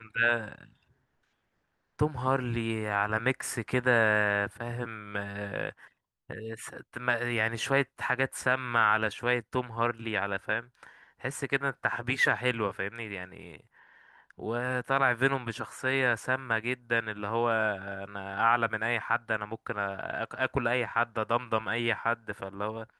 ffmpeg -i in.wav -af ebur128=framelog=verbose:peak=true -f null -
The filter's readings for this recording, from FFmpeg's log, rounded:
Integrated loudness:
  I:         -29.7 LUFS
  Threshold: -40.2 LUFS
Loudness range:
  LRA:         3.5 LU
  Threshold: -50.2 LUFS
  LRA low:   -32.1 LUFS
  LRA high:  -28.6 LUFS
True peak:
  Peak:      -10.0 dBFS